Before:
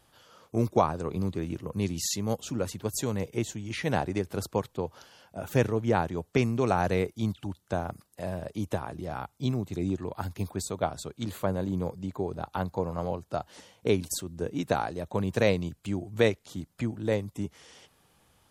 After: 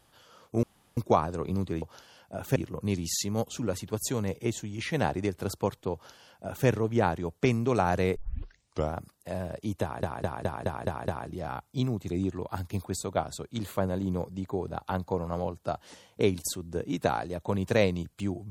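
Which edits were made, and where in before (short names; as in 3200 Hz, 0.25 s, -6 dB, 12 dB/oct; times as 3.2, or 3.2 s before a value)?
0.63 insert room tone 0.34 s
4.85–5.59 copy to 1.48
7.08 tape start 0.79 s
8.74 stutter 0.21 s, 7 plays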